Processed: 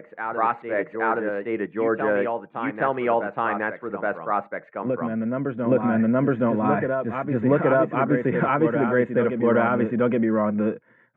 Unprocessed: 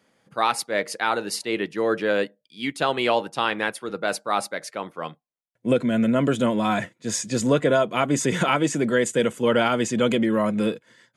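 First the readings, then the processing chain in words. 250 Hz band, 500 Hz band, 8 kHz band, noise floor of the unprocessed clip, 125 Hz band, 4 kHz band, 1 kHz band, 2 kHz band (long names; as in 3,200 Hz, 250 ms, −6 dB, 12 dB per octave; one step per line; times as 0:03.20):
+1.0 dB, +1.0 dB, below −40 dB, −74 dBFS, +1.0 dB, below −20 dB, +1.0 dB, −1.0 dB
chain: inverse Chebyshev low-pass filter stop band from 4,800 Hz, stop band 50 dB
backwards echo 821 ms −5.5 dB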